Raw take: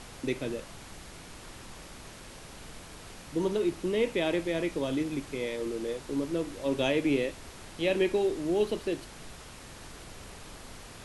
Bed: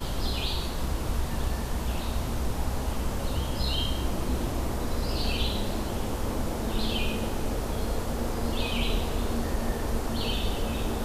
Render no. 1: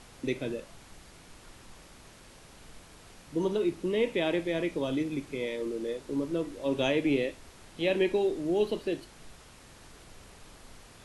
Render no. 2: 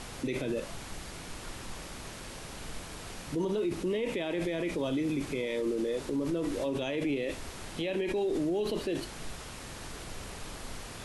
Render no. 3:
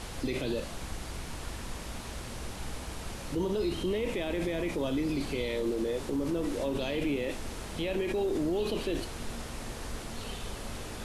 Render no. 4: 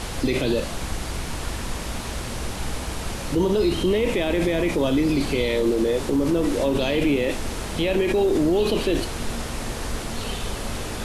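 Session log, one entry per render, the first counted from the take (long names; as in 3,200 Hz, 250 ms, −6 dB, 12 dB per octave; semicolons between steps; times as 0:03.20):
noise reduction from a noise print 6 dB
in parallel at −1 dB: compressor whose output falls as the input rises −38 dBFS, ratio −1; on the sum: brickwall limiter −23.5 dBFS, peak gain reduction 9 dB
mix in bed −13 dB
level +10 dB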